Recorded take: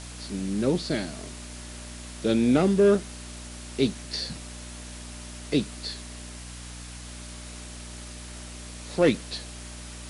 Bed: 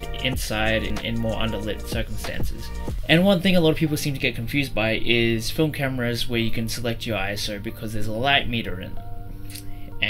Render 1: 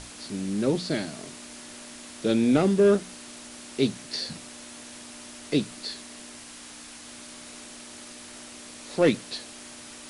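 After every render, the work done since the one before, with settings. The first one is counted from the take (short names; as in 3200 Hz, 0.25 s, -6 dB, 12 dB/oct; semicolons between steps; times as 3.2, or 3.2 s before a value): notches 60/120/180 Hz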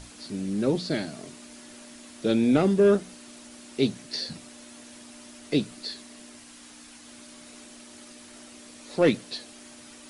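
denoiser 6 dB, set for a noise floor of -44 dBFS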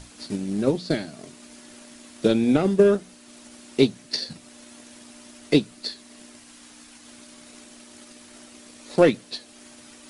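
transient shaper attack +8 dB, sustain -3 dB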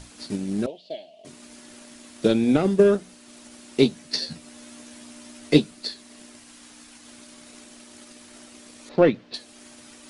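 0.66–1.25 double band-pass 1400 Hz, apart 2.2 oct; 3.84–5.71 doubler 13 ms -5 dB; 8.89–9.34 air absorption 240 m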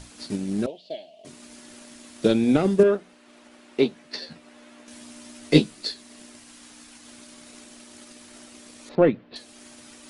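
2.83–4.88 tone controls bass -10 dB, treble -14 dB; 5.52–5.92 doubler 19 ms -4 dB; 8.95–9.36 air absorption 340 m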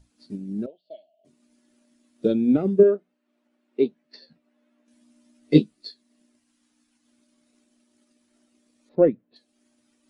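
spectral expander 1.5:1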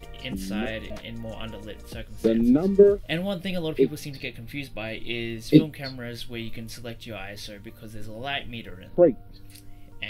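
add bed -11 dB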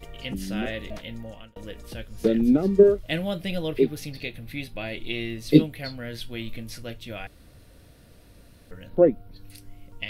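1.13–1.56 fade out; 7.27–8.71 room tone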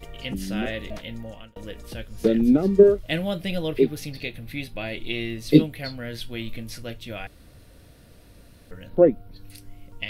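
gain +1.5 dB; limiter -1 dBFS, peak gain reduction 1 dB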